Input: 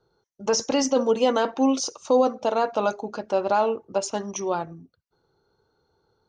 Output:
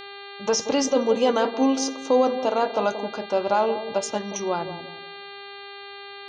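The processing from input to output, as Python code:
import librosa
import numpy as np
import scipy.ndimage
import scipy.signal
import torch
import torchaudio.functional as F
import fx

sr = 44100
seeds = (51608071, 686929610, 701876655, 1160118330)

y = fx.echo_bbd(x, sr, ms=179, stages=1024, feedback_pct=34, wet_db=-10.0)
y = fx.dmg_buzz(y, sr, base_hz=400.0, harmonics=11, level_db=-40.0, tilt_db=-2, odd_only=False)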